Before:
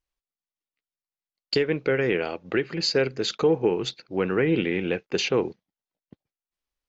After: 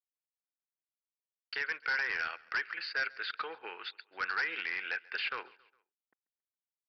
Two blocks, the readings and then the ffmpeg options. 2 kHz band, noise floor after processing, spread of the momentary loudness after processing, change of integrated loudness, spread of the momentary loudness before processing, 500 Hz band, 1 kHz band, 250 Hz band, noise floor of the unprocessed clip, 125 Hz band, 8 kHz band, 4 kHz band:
−0.5 dB, below −85 dBFS, 11 LU, −10.0 dB, 5 LU, −26.5 dB, −4.0 dB, −32.5 dB, below −85 dBFS, below −35 dB, can't be measured, −11.0 dB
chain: -filter_complex "[0:a]acrossover=split=2600[link_01][link_02];[link_02]acompressor=threshold=-37dB:ratio=4:attack=1:release=60[link_03];[link_01][link_03]amix=inputs=2:normalize=0,anlmdn=0.0398,highpass=frequency=1500:width_type=q:width=3.8,aresample=11025,asoftclip=type=hard:threshold=-22dB,aresample=44100,aecho=1:1:137|274|411:0.0668|0.0327|0.016,volume=-5.5dB"

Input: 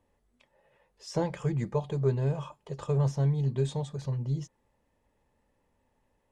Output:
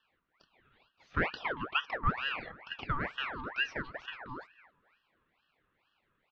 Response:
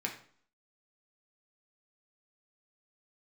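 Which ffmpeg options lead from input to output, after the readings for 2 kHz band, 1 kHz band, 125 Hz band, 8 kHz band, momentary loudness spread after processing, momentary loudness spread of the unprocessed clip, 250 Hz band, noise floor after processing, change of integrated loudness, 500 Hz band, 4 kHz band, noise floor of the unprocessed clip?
+16.5 dB, +5.5 dB, −16.5 dB, can't be measured, 11 LU, 11 LU, −9.5 dB, −78 dBFS, −4.5 dB, −11.0 dB, +9.0 dB, −74 dBFS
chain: -filter_complex "[0:a]asplit=2[link_01][link_02];[link_02]adelay=276,lowpass=frequency=1100:poles=1,volume=-18dB,asplit=2[link_03][link_04];[link_04]adelay=276,lowpass=frequency=1100:poles=1,volume=0.31,asplit=2[link_05][link_06];[link_06]adelay=276,lowpass=frequency=1100:poles=1,volume=0.31[link_07];[link_01][link_03][link_05][link_07]amix=inputs=4:normalize=0,highpass=frequency=230:width_type=q:width=0.5412,highpass=frequency=230:width_type=q:width=1.307,lowpass=frequency=3100:width_type=q:width=0.5176,lowpass=frequency=3100:width_type=q:width=0.7071,lowpass=frequency=3100:width_type=q:width=1.932,afreqshift=170,aeval=exprs='val(0)*sin(2*PI*1400*n/s+1400*0.6/2.2*sin(2*PI*2.2*n/s))':channel_layout=same,volume=2.5dB"

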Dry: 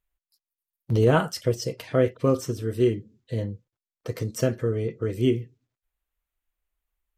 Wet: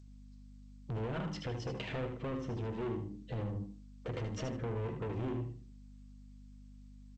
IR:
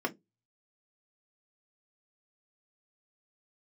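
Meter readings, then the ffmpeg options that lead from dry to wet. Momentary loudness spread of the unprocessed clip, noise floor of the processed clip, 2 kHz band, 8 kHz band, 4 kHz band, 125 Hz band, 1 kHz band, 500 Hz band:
14 LU, −54 dBFS, −12.0 dB, −18.0 dB, −11.5 dB, −11.5 dB, −12.0 dB, −16.0 dB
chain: -filter_complex "[0:a]lowpass=4500,bandreject=frequency=50:width_type=h:width=6,bandreject=frequency=100:width_type=h:width=6,bandreject=frequency=150:width_type=h:width=6,bandreject=frequency=200:width_type=h:width=6,bandreject=frequency=250:width_type=h:width=6,bandreject=frequency=300:width_type=h:width=6,bandreject=frequency=350:width_type=h:width=6,adynamicequalizer=threshold=0.0224:dfrequency=180:dqfactor=0.73:tfrequency=180:tqfactor=0.73:attack=5:release=100:ratio=0.375:range=2.5:mode=boostabove:tftype=bell,acompressor=threshold=-27dB:ratio=20,asoftclip=type=tanh:threshold=-37dB,aexciter=amount=2.6:drive=1:freq=2600,adynamicsmooth=sensitivity=6.5:basefreq=2100,aeval=exprs='val(0)+0.00178*(sin(2*PI*50*n/s)+sin(2*PI*2*50*n/s)/2+sin(2*PI*3*50*n/s)/3+sin(2*PI*4*50*n/s)/4+sin(2*PI*5*50*n/s)/5)':channel_layout=same,aecho=1:1:76|152|228:0.447|0.0938|0.0197,asplit=2[link_01][link_02];[1:a]atrim=start_sample=2205,adelay=77[link_03];[link_02][link_03]afir=irnorm=-1:irlink=0,volume=-21.5dB[link_04];[link_01][link_04]amix=inputs=2:normalize=0,volume=2dB" -ar 16000 -c:a g722

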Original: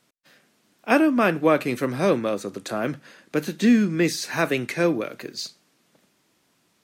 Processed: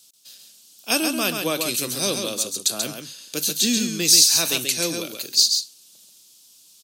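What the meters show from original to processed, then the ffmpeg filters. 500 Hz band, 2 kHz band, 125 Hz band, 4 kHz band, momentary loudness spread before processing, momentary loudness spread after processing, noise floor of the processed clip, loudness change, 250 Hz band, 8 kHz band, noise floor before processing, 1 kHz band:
−6.5 dB, −2.0 dB, −6.5 dB, +16.0 dB, 14 LU, 14 LU, −53 dBFS, +3.5 dB, −6.5 dB, +19.0 dB, −67 dBFS, −6.5 dB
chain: -af "aecho=1:1:135:0.531,aexciter=amount=13.6:drive=5.7:freq=3000,volume=-7.5dB"

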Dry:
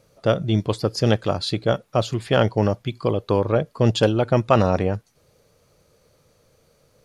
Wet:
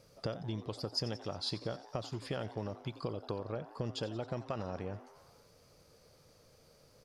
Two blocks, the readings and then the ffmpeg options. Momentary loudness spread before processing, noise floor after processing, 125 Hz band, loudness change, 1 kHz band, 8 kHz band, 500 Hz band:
6 LU, −64 dBFS, −19.0 dB, −18.5 dB, −19.5 dB, −14.0 dB, −20.0 dB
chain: -filter_complex "[0:a]acompressor=threshold=-31dB:ratio=12,equalizer=frequency=5000:width=6.4:gain=10,asplit=7[link_01][link_02][link_03][link_04][link_05][link_06][link_07];[link_02]adelay=89,afreqshift=150,volume=-16dB[link_08];[link_03]adelay=178,afreqshift=300,volume=-20dB[link_09];[link_04]adelay=267,afreqshift=450,volume=-24dB[link_10];[link_05]adelay=356,afreqshift=600,volume=-28dB[link_11];[link_06]adelay=445,afreqshift=750,volume=-32.1dB[link_12];[link_07]adelay=534,afreqshift=900,volume=-36.1dB[link_13];[link_01][link_08][link_09][link_10][link_11][link_12][link_13]amix=inputs=7:normalize=0,volume=-4dB"

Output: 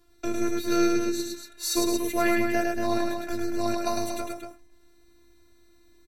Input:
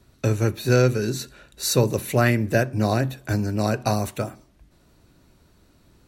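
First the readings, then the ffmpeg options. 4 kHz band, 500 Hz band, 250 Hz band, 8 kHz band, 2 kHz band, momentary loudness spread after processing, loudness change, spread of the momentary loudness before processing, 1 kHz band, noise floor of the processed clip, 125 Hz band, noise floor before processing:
−2.5 dB, −4.5 dB, −1.0 dB, −2.0 dB, −4.0 dB, 10 LU, −4.5 dB, 10 LU, −1.5 dB, −58 dBFS, −21.5 dB, −59 dBFS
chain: -af "afftfilt=real='hypot(re,im)*cos(PI*b)':imag='0':win_size=512:overlap=0.75,aecho=1:1:105|233.2:0.708|0.447,volume=-1.5dB"

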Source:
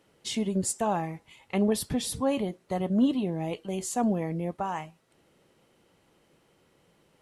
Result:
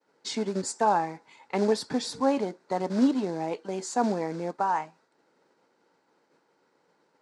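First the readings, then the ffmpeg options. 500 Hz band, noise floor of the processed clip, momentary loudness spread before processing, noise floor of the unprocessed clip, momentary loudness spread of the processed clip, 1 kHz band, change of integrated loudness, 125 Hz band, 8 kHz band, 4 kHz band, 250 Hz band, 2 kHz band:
+2.5 dB, −71 dBFS, 8 LU, −66 dBFS, 9 LU, +5.5 dB, +1.0 dB, −5.5 dB, −3.5 dB, 0.0 dB, −1.0 dB, +3.0 dB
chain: -af "agate=range=-33dB:threshold=-59dB:ratio=3:detection=peak,acrusher=bits=5:mode=log:mix=0:aa=0.000001,highpass=240,equalizer=frequency=270:width_type=q:width=4:gain=4,equalizer=frequency=450:width_type=q:width=4:gain=4,equalizer=frequency=900:width_type=q:width=4:gain=9,equalizer=frequency=1500:width_type=q:width=4:gain=8,equalizer=frequency=3000:width_type=q:width=4:gain=-9,equalizer=frequency=4600:width_type=q:width=4:gain=5,lowpass=frequency=7500:width=0.5412,lowpass=frequency=7500:width=1.3066"

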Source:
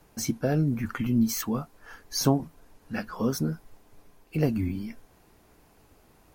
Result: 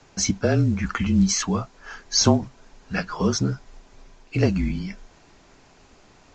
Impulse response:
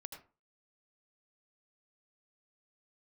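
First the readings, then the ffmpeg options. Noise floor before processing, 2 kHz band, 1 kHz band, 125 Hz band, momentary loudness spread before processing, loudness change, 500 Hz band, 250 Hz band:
−60 dBFS, +8.0 dB, +6.0 dB, +5.5 dB, 12 LU, +5.5 dB, +5.0 dB, +4.0 dB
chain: -af "tiltshelf=frequency=1300:gain=-3,afreqshift=-32,volume=7.5dB" -ar 16000 -c:a pcm_mulaw

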